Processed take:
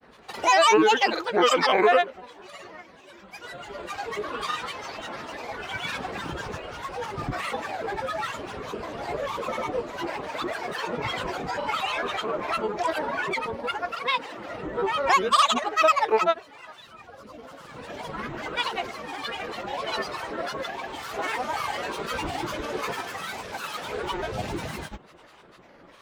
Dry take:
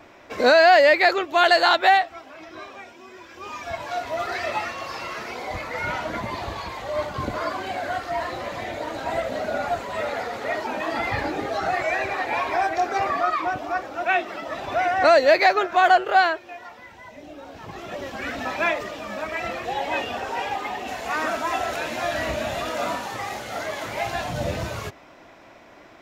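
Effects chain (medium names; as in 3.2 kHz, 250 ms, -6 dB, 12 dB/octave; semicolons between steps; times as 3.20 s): granulator, pitch spread up and down by 12 st; trim -2.5 dB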